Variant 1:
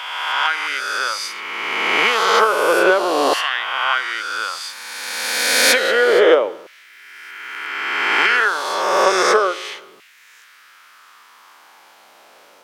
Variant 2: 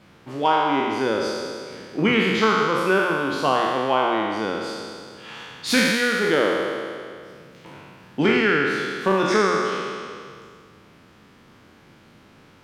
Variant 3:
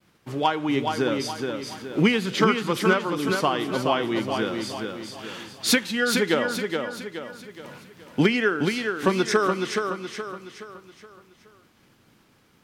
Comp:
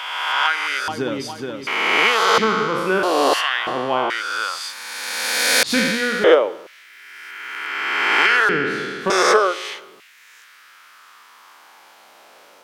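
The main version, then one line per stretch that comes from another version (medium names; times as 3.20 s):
1
0.88–1.67 s: from 3
2.38–3.03 s: from 2
3.67–4.10 s: from 2
5.63–6.24 s: from 2
8.49–9.10 s: from 2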